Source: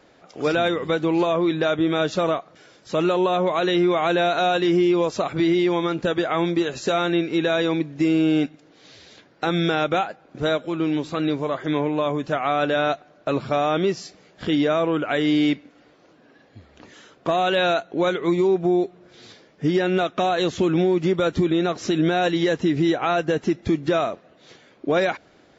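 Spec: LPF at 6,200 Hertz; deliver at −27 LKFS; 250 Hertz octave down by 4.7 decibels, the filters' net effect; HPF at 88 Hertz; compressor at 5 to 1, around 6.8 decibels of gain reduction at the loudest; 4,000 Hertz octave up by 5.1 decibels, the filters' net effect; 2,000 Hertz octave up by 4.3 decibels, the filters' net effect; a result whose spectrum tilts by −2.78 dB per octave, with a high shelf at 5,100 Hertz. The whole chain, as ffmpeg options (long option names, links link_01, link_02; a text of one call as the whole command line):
ffmpeg -i in.wav -af "highpass=88,lowpass=6200,equalizer=frequency=250:width_type=o:gain=-8,equalizer=frequency=2000:width_type=o:gain=5,equalizer=frequency=4000:width_type=o:gain=6,highshelf=frequency=5100:gain=-3,acompressor=threshold=-24dB:ratio=5,volume=1dB" out.wav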